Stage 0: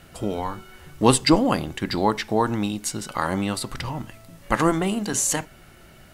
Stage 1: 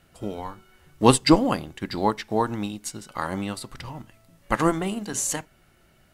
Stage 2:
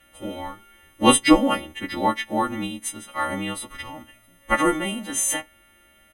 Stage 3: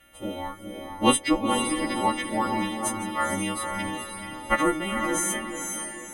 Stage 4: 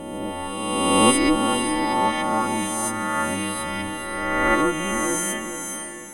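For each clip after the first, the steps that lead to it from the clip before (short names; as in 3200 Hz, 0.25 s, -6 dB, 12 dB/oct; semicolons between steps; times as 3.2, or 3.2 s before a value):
upward expander 1.5:1, over -36 dBFS; gain +1.5 dB
frequency quantiser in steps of 2 st; resonant high shelf 3600 Hz -6 dB, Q 1.5; comb 3.5 ms, depth 79%; gain -1 dB
vocal rider within 5 dB 0.5 s; on a send: diffused feedback echo 0.473 s, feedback 41%, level -4 dB; on the sum: gain -5.5 dB
spectral swells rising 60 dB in 1.96 s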